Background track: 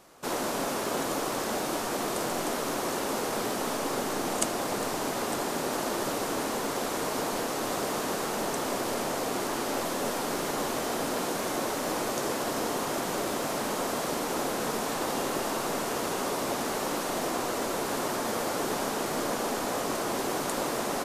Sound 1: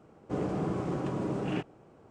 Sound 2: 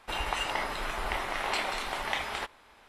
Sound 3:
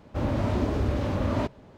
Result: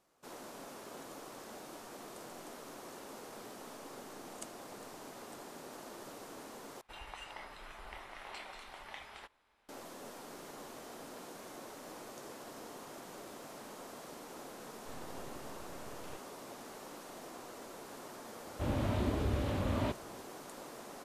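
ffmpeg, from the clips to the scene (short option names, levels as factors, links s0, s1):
-filter_complex "[0:a]volume=0.119[s0];[1:a]aeval=exprs='abs(val(0))':c=same[s1];[3:a]lowpass=f=3800:t=q:w=1.7[s2];[s0]asplit=2[s3][s4];[s3]atrim=end=6.814[s5];[2:a]atrim=end=2.88,asetpts=PTS-STARTPTS,volume=0.15[s6];[s4]atrim=start=9.686[s7];[s1]atrim=end=2.1,asetpts=PTS-STARTPTS,volume=0.168,afade=t=in:d=0.004:c=hsin,afade=t=out:st=2.096:d=0.004:c=hsin,adelay=14560[s8];[s2]atrim=end=1.77,asetpts=PTS-STARTPTS,volume=0.422,afade=t=in:d=0.004:c=hsin,afade=t=out:st=1.766:d=0.004:c=hsin,adelay=18450[s9];[s5][s6]acrossfade=d=0.004:c1=hsin:c2=hsin[s10];[s10][s7]acrossfade=d=0.004:c1=hsin:c2=hsin[s11];[s11][s8][s9]amix=inputs=3:normalize=0"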